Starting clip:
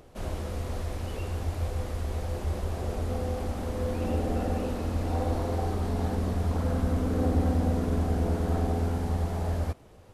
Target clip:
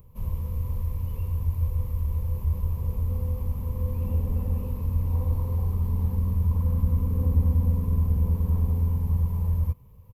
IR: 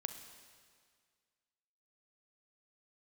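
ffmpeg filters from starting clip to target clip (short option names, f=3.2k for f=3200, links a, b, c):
-af "firequalizer=gain_entry='entry(140,0);entry(330,-23);entry(490,-13);entry(700,-30);entry(1000,-6);entry(1400,-28);entry(2300,-17);entry(3800,-23);entry(9100,-19);entry(14000,10)':delay=0.05:min_phase=1,volume=5.5dB"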